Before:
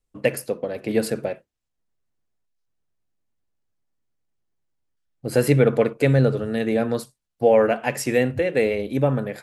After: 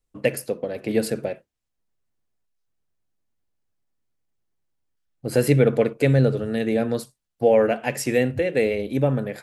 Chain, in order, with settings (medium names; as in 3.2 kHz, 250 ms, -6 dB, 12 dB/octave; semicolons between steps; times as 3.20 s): dynamic bell 1.1 kHz, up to -5 dB, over -36 dBFS, Q 1.4